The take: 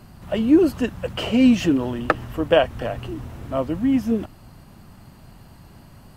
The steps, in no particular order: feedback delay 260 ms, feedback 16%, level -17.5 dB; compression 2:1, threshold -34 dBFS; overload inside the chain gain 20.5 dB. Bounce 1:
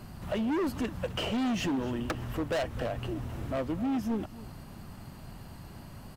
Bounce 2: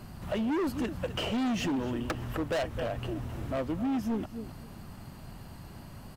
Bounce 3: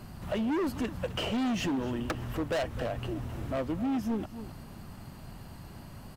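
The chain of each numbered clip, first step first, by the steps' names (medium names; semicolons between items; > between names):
overload inside the chain > compression > feedback delay; feedback delay > overload inside the chain > compression; overload inside the chain > feedback delay > compression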